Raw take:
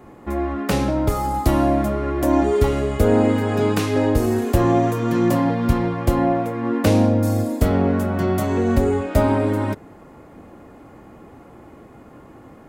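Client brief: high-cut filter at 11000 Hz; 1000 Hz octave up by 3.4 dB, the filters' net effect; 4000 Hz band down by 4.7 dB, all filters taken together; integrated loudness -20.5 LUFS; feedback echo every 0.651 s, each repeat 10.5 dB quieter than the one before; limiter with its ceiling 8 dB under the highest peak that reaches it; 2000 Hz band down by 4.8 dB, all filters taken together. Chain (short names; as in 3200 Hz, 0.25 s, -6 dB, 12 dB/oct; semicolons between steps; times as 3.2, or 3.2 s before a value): LPF 11000 Hz; bell 1000 Hz +6.5 dB; bell 2000 Hz -8.5 dB; bell 4000 Hz -3.5 dB; limiter -10.5 dBFS; feedback echo 0.651 s, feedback 30%, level -10.5 dB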